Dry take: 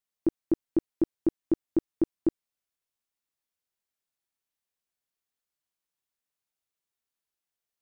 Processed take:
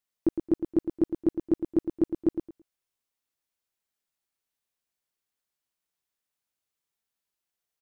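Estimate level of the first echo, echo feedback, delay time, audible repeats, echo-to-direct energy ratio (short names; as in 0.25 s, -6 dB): -8.0 dB, 19%, 0.11 s, 2, -8.0 dB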